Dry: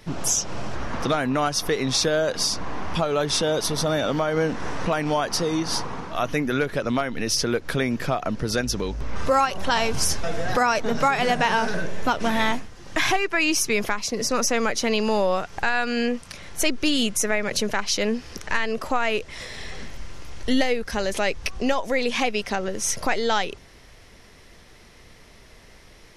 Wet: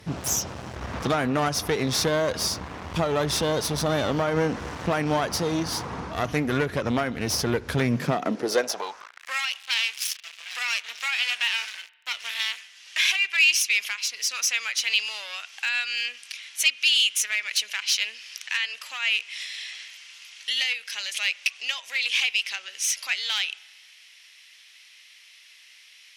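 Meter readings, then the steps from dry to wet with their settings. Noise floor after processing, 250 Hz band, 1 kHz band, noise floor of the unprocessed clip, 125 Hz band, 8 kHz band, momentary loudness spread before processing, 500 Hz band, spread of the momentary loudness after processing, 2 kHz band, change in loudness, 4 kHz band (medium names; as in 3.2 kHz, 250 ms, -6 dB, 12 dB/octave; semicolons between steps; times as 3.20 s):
-52 dBFS, -5.0 dB, -7.5 dB, -49 dBFS, -0.5 dB, -1.5 dB, 8 LU, -5.0 dB, 12 LU, +0.5 dB, -1.0 dB, +3.0 dB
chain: one-sided clip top -26.5 dBFS, bottom -9.5 dBFS; spring tank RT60 1.3 s, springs 33 ms, chirp 60 ms, DRR 20 dB; high-pass sweep 71 Hz -> 2.7 kHz, 7.69–9.41 s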